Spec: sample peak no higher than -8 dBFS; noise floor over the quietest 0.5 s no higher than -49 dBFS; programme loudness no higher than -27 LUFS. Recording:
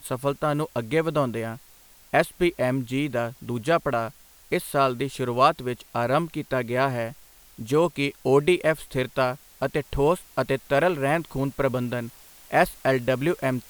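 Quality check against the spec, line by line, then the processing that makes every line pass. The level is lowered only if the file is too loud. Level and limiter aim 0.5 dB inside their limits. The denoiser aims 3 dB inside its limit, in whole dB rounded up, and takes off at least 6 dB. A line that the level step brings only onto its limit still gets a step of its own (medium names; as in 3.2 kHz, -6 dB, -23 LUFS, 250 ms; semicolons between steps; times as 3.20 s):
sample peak -5.0 dBFS: fail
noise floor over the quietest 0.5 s -53 dBFS: pass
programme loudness -25.0 LUFS: fail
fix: trim -2.5 dB; peak limiter -8.5 dBFS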